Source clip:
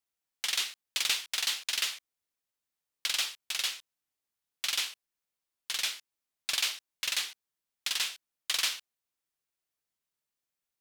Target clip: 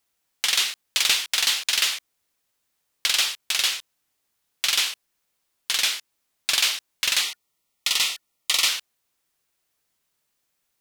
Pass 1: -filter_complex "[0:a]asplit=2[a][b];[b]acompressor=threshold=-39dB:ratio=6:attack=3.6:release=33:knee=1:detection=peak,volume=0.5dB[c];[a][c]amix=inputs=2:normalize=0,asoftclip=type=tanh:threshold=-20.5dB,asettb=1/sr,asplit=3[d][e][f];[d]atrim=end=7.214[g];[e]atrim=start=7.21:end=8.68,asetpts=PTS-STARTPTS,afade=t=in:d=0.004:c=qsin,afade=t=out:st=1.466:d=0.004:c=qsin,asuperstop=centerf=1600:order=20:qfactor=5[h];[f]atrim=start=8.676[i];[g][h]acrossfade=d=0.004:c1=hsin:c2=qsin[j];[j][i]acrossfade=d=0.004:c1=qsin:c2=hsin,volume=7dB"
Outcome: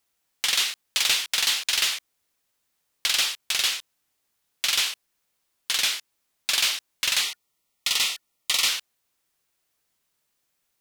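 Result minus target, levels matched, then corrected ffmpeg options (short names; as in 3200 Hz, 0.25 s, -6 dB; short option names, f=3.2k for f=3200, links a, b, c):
soft clip: distortion +11 dB
-filter_complex "[0:a]asplit=2[a][b];[b]acompressor=threshold=-39dB:ratio=6:attack=3.6:release=33:knee=1:detection=peak,volume=0.5dB[c];[a][c]amix=inputs=2:normalize=0,asoftclip=type=tanh:threshold=-13dB,asettb=1/sr,asplit=3[d][e][f];[d]atrim=end=7.214[g];[e]atrim=start=7.21:end=8.68,asetpts=PTS-STARTPTS,afade=t=in:d=0.004:c=qsin,afade=t=out:st=1.466:d=0.004:c=qsin,asuperstop=centerf=1600:order=20:qfactor=5[h];[f]atrim=start=8.676[i];[g][h]acrossfade=d=0.004:c1=hsin:c2=qsin[j];[j][i]acrossfade=d=0.004:c1=qsin:c2=hsin,volume=7dB"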